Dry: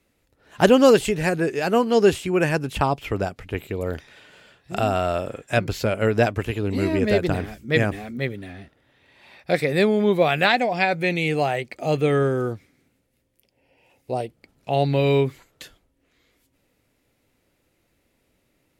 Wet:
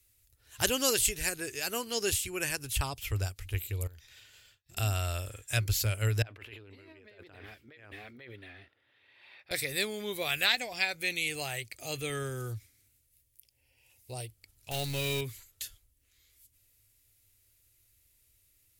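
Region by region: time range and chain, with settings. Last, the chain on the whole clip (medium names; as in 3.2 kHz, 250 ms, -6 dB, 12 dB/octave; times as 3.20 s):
3.87–4.77 s: expander -49 dBFS + peaking EQ 9.5 kHz -12.5 dB 0.24 oct + compression 8:1, threshold -41 dBFS
6.22–9.51 s: compressor with a negative ratio -31 dBFS + high-pass 320 Hz + distance through air 410 m
14.71–15.21 s: jump at every zero crossing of -29 dBFS + treble shelf 10 kHz -5 dB
whole clip: FFT filter 110 Hz 0 dB, 160 Hz -23 dB, 350 Hz -17 dB, 700 Hz -19 dB, 12 kHz +11 dB; endings held to a fixed fall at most 550 dB/s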